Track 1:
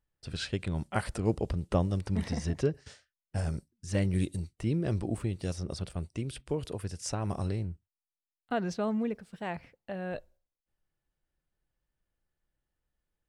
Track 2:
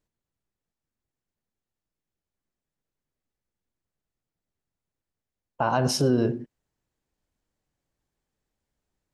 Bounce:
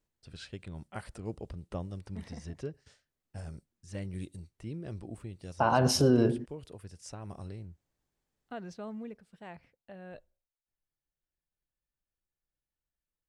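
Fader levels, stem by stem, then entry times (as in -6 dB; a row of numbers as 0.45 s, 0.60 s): -10.5 dB, -1.5 dB; 0.00 s, 0.00 s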